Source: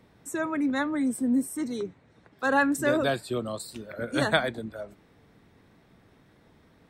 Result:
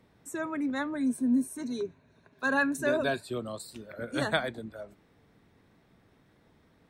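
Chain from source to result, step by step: 0.93–3.24 ripple EQ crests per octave 1.5, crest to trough 9 dB; gain -4.5 dB

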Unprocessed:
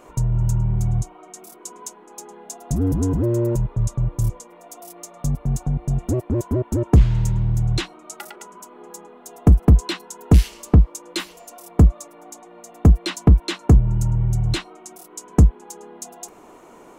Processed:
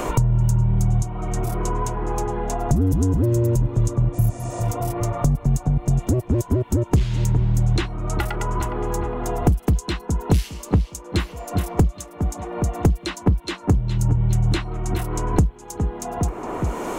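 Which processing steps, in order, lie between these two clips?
darkening echo 0.412 s, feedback 49%, low-pass 3300 Hz, level -15 dB; spectral repair 4.16–4.58, 350–10000 Hz after; three-band squash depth 100%

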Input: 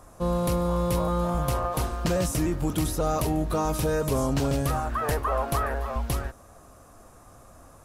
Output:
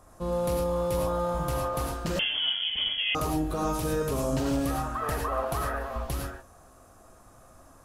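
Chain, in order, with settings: non-linear reverb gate 0.13 s rising, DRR 0.5 dB; 2.19–3.15 inverted band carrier 3300 Hz; gain -5.5 dB

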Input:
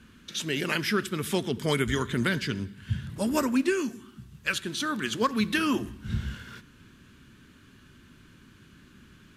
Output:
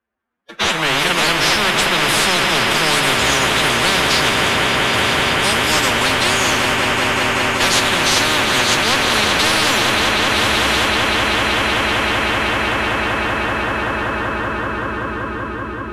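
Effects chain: delta modulation 64 kbps, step -40 dBFS; notches 50/100/150/200/250/300 Hz; gate -38 dBFS, range -58 dB; high shelf 4000 Hz -3 dB; AGC gain up to 15 dB; three-band isolator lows -13 dB, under 380 Hz, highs -22 dB, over 2000 Hz; time stretch by phase-locked vocoder 1.7×; swelling echo 0.191 s, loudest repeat 5, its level -13 dB; on a send at -12.5 dB: reverb RT60 2.7 s, pre-delay 6 ms; on the sum: spectral compressor 10:1; gain +2 dB

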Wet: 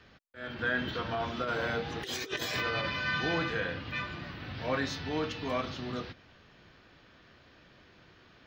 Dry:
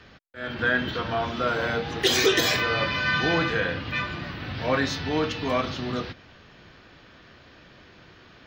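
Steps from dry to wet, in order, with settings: 0.77–2.9 negative-ratio compressor -25 dBFS, ratio -0.5; gain -7.5 dB

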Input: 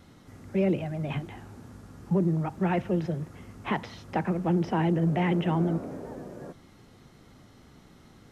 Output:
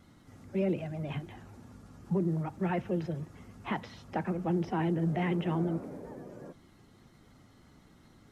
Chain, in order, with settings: bin magnitudes rounded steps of 15 dB; gain -4.5 dB

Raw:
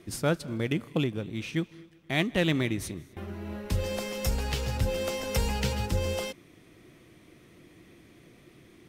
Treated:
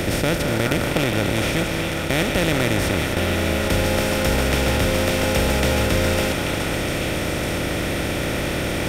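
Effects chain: per-bin compression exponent 0.2; delay with a stepping band-pass 0.418 s, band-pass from 1100 Hz, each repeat 1.4 oct, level -1 dB

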